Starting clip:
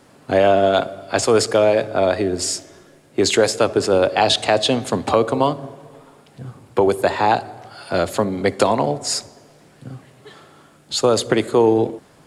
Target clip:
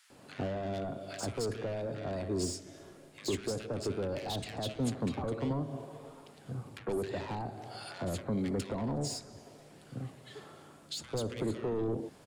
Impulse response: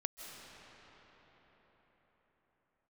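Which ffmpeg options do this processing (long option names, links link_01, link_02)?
-filter_complex "[0:a]asoftclip=type=tanh:threshold=-17dB,acrossover=split=310[link_01][link_02];[link_02]acompressor=threshold=-33dB:ratio=6[link_03];[link_01][link_03]amix=inputs=2:normalize=0,acrossover=split=1500[link_04][link_05];[link_04]adelay=100[link_06];[link_06][link_05]amix=inputs=2:normalize=0,volume=-5.5dB"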